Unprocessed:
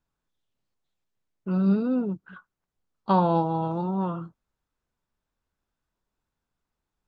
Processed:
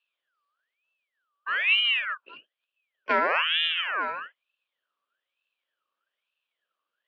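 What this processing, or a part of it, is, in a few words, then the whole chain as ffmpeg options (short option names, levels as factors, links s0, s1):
voice changer toy: -af "aeval=exprs='val(0)*sin(2*PI*1900*n/s+1900*0.4/1.1*sin(2*PI*1.1*n/s))':c=same,highpass=440,equalizer=f=560:t=q:w=4:g=6,equalizer=f=820:t=q:w=4:g=-7,equalizer=f=2100:t=q:w=4:g=-10,equalizer=f=3100:t=q:w=4:g=8,lowpass=f=4200:w=0.5412,lowpass=f=4200:w=1.3066,volume=1.41"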